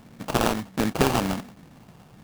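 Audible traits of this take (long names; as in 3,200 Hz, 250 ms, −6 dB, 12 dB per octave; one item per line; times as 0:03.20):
a buzz of ramps at a fixed pitch in blocks of 16 samples
phaser sweep stages 2, 1.4 Hz, lowest notch 510–1,100 Hz
aliases and images of a low sample rate 2,000 Hz, jitter 20%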